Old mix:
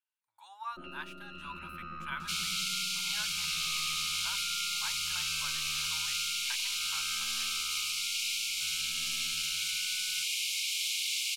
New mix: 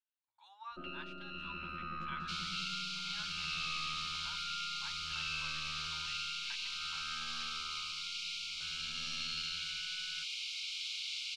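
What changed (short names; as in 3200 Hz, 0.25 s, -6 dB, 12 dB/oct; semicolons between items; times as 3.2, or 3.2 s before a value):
speech -8.5 dB; second sound -10.0 dB; master: add synth low-pass 4400 Hz, resonance Q 1.6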